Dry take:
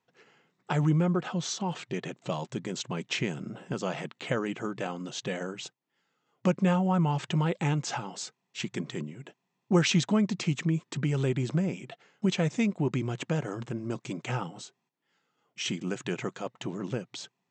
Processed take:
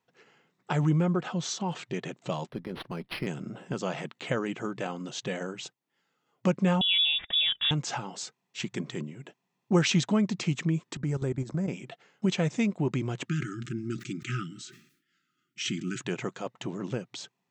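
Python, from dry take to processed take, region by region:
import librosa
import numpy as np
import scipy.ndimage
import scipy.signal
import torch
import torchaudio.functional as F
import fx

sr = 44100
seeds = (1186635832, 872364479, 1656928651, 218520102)

y = fx.chain(x, sr, fx.highpass(hz=130.0, slope=24),
    fx.tube_stage(drive_db=21.0, bias=0.55),
    fx.resample_linear(factor=6), at=(2.49, 3.27))
y = fx.chain(y, sr, fx.resample_bad(factor=6, down='filtered', up='zero_stuff'),
    fx.freq_invert(carrier_hz=3600),
    fx.band_shelf(hz=570.0, db=-10.0, octaves=2.8), at=(6.81, 7.71))
y = fx.chain(y, sr, fx.peak_eq(hz=2900.0, db=-14.0, octaves=0.67),
    fx.level_steps(step_db=14), at=(10.97, 11.68))
y = fx.chain(y, sr, fx.brickwall_bandstop(low_hz=390.0, high_hz=1200.0),
    fx.sustainer(db_per_s=94.0), at=(13.26, 16.0))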